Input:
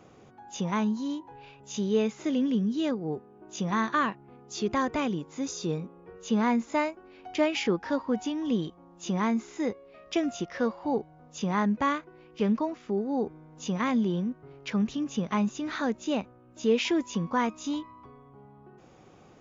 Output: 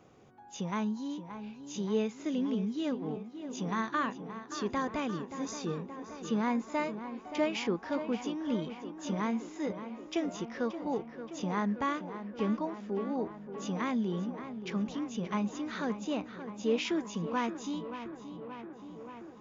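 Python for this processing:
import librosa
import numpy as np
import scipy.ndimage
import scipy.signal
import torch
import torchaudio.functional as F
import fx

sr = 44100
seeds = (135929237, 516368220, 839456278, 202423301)

y = fx.echo_tape(x, sr, ms=576, feedback_pct=86, wet_db=-8.5, lp_hz=2700.0, drive_db=19.0, wow_cents=6)
y = F.gain(torch.from_numpy(y), -5.5).numpy()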